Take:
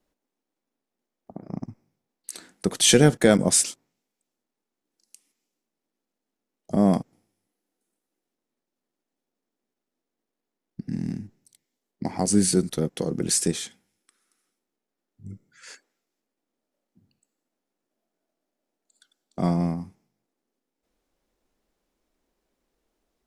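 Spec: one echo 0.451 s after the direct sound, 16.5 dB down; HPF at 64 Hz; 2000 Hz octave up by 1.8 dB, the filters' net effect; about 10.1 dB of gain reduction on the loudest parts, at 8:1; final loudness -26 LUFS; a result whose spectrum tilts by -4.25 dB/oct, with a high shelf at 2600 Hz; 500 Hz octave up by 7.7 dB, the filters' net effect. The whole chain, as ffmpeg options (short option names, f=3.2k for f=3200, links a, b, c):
-af "highpass=64,equalizer=f=500:t=o:g=9,equalizer=f=2k:t=o:g=3,highshelf=f=2.6k:g=-3,acompressor=threshold=-16dB:ratio=8,aecho=1:1:451:0.15,volume=-1dB"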